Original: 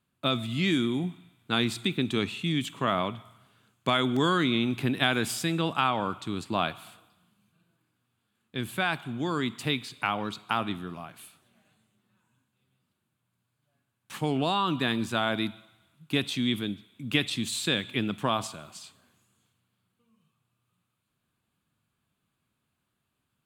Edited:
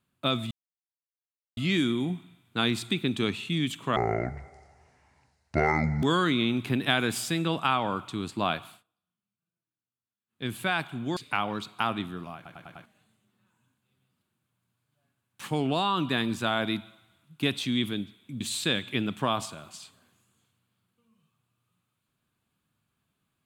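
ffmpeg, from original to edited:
-filter_complex "[0:a]asplit=13[a][b][c][d][e][f][g][h][i][j][k][l][m];[a]atrim=end=0.51,asetpts=PTS-STARTPTS,afade=t=out:st=0.506:d=0.004:c=hsin,apad=pad_dur=1.06[n];[b]atrim=start=0.51:end=2.904,asetpts=PTS-STARTPTS,afade=t=in:d=0.004:c=hsin[o];[c]atrim=start=2.9:end=4.16,asetpts=PTS-STARTPTS,asetrate=26901,aresample=44100[p];[d]atrim=start=4.156:end=6.97,asetpts=PTS-STARTPTS,afade=t=out:st=2.634:d=0.18:silence=0.0707946[q];[e]atrim=start=6.97:end=8.41,asetpts=PTS-STARTPTS,volume=-23dB[r];[f]atrim=start=8.41:end=9.302,asetpts=PTS-STARTPTS,afade=t=in:d=0.18:silence=0.0707946[s];[g]atrim=start=9.868:end=11.162[t];[h]atrim=start=11.058:end=11.162[u];[i]atrim=start=11.058:end=11.162[v];[j]atrim=start=11.058:end=11.162[w];[k]atrim=start=11.058:end=11.162[x];[l]atrim=start=11.558:end=17.112[y];[m]atrim=start=17.418[z];[n][o]concat=n=2:v=0:a=1[aa];[aa][p]acrossfade=d=0.004:c1=hsin:c2=hsin[ab];[q][r][s]concat=n=3:v=0:a=1[ac];[ab][ac]acrossfade=d=0.004:c1=hsin:c2=hsin[ad];[ad][t]acrossfade=d=0.004:c1=hsin:c2=hsin[ae];[ae][u]acrossfade=d=0.004:c1=hsin:c2=hsin[af];[af][v]acrossfade=d=0.004:c1=hsin:c2=hsin[ag];[ag][w]acrossfade=d=0.004:c1=hsin:c2=hsin[ah];[ah][x]acrossfade=d=0.004:c1=hsin:c2=hsin[ai];[ai][y]acrossfade=d=0.004:c1=hsin:c2=hsin[aj];[aj][z]acrossfade=d=0.004:c1=hsin:c2=hsin"

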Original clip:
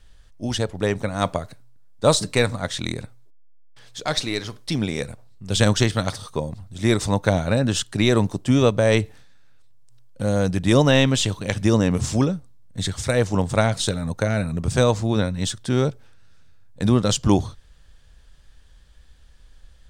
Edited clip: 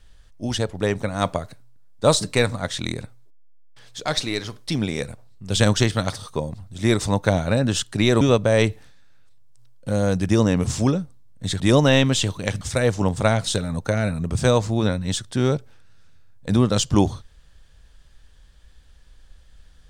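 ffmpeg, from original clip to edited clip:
-filter_complex "[0:a]asplit=5[a][b][c][d][e];[a]atrim=end=8.212[f];[b]atrim=start=8.538:end=10.622[g];[c]atrim=start=11.628:end=12.942[h];[d]atrim=start=10.618:end=11.632[i];[e]atrim=start=12.938[j];[f][g]acrossfade=d=0.004:c1=hsin:c2=hsin[k];[k][h]acrossfade=d=0.004:c1=hsin:c2=hsin[l];[l][i]acrossfade=d=0.004:c1=hsin:c2=hsin[m];[m][j]acrossfade=d=0.004:c1=hsin:c2=hsin"

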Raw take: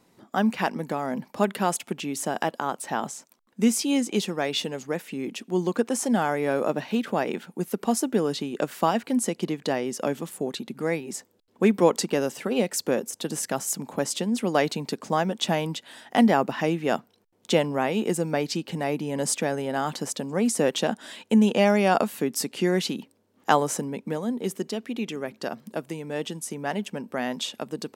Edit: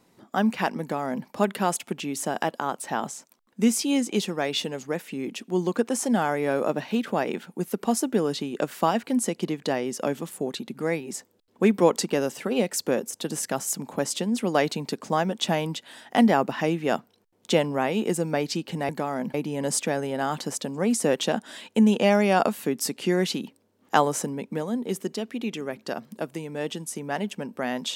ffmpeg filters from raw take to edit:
-filter_complex "[0:a]asplit=3[a][b][c];[a]atrim=end=18.892[d];[b]atrim=start=0.808:end=1.262[e];[c]atrim=start=18.888[f];[d][e]acrossfade=d=0.004:c1=hsin:c2=hsin[g];[g][f]acrossfade=d=0.004:c1=hsin:c2=hsin"

